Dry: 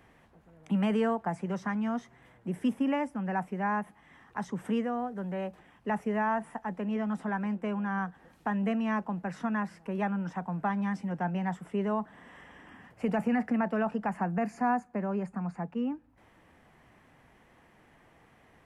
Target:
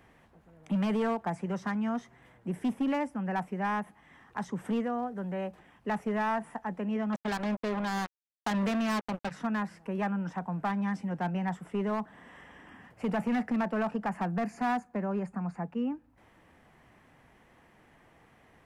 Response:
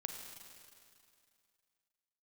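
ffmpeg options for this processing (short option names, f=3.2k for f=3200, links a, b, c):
-filter_complex "[0:a]asplit=3[a][b][c];[a]afade=t=out:st=7.12:d=0.02[d];[b]acrusher=bits=4:mix=0:aa=0.5,afade=t=in:st=7.12:d=0.02,afade=t=out:st=9.3:d=0.02[e];[c]afade=t=in:st=9.3:d=0.02[f];[d][e][f]amix=inputs=3:normalize=0,asoftclip=type=hard:threshold=-24.5dB"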